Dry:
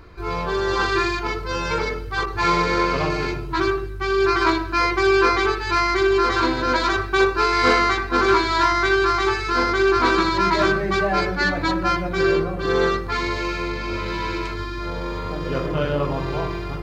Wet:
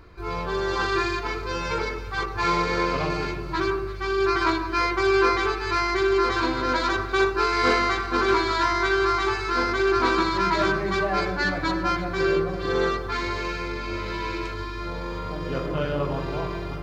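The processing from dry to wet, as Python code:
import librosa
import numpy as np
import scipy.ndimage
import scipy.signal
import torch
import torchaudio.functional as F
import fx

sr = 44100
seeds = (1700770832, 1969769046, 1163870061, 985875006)

y = fx.echo_alternate(x, sr, ms=167, hz=1400.0, feedback_pct=69, wet_db=-11.0)
y = y * librosa.db_to_amplitude(-4.0)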